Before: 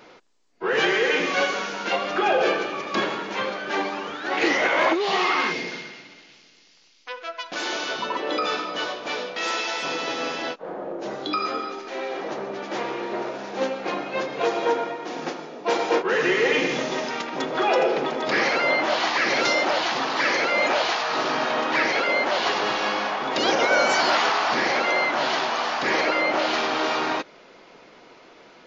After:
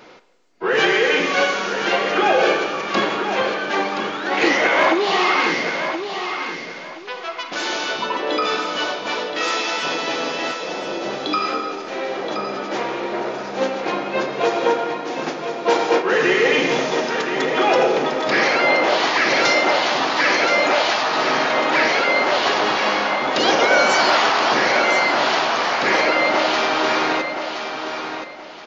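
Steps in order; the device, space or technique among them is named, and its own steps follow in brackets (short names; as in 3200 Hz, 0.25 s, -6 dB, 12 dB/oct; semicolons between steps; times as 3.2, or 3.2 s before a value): feedback echo 1.024 s, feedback 26%, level -8 dB; filtered reverb send (on a send at -11 dB: HPF 250 Hz + LPF 5200 Hz 12 dB/oct + reverb RT60 1.3 s, pre-delay 27 ms); on the sum: gain +4 dB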